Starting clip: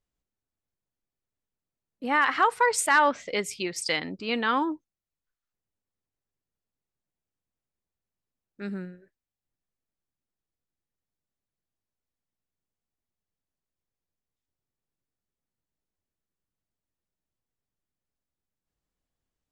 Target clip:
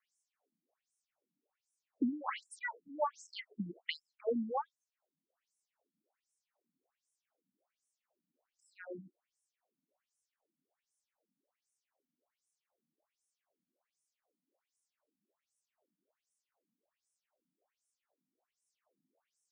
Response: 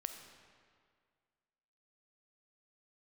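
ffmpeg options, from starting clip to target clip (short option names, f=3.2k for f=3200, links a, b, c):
-af "equalizer=f=630:t=o:w=0.67:g=10,equalizer=f=4k:t=o:w=0.67:g=-7,equalizer=f=10k:t=o:w=0.67:g=6,acompressor=threshold=-40dB:ratio=6,afftfilt=real='re*between(b*sr/1024,210*pow(7500/210,0.5+0.5*sin(2*PI*1.3*pts/sr))/1.41,210*pow(7500/210,0.5+0.5*sin(2*PI*1.3*pts/sr))*1.41)':imag='im*between(b*sr/1024,210*pow(7500/210,0.5+0.5*sin(2*PI*1.3*pts/sr))/1.41,210*pow(7500/210,0.5+0.5*sin(2*PI*1.3*pts/sr))*1.41)':win_size=1024:overlap=0.75,volume=12dB"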